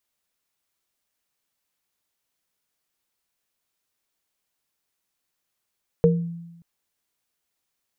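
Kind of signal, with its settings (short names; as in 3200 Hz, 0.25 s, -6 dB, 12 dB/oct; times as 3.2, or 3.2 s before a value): sine partials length 0.58 s, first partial 169 Hz, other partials 468 Hz, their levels 4 dB, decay 1.03 s, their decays 0.26 s, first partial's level -14.5 dB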